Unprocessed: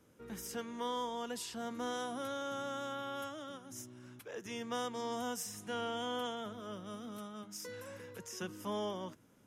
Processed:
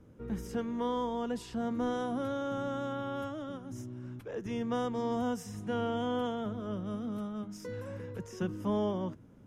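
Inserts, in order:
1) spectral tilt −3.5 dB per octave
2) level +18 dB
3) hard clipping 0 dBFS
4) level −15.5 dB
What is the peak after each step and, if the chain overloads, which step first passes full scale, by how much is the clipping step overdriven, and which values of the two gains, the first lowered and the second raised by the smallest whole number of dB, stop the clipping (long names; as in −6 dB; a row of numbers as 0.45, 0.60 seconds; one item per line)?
−23.0, −5.0, −5.0, −20.5 dBFS
no step passes full scale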